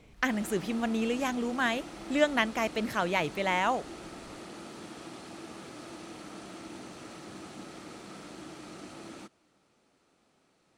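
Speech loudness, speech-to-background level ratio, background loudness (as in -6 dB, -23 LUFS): -30.0 LUFS, 14.5 dB, -44.5 LUFS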